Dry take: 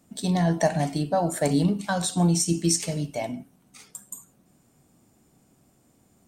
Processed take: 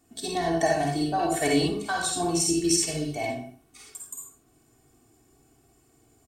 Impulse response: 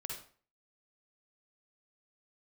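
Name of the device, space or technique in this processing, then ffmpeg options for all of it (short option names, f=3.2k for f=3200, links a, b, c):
microphone above a desk: -filter_complex "[0:a]aecho=1:1:2.7:0.89[a];[1:a]atrim=start_sample=2205[b];[a][b]afir=irnorm=-1:irlink=0,asettb=1/sr,asplit=3[c][d][e];[c]atrim=end=1.194[f];[d]atrim=start=1.19:end=1.68,asetpts=PTS-STARTPTS,afade=t=in:d=0.004:c=qsin,afade=t=out:st=0.486:d=0.004:c=qsin,equalizer=f=2.7k:t=o:w=0.95:g=9.5[g];[e]atrim=start=1.676[h];[f][g]acrossfade=d=0.004:c1=hsin:c2=qsin[i];[i][h]acrossfade=d=0.004:c1=qsin:c2=hsin"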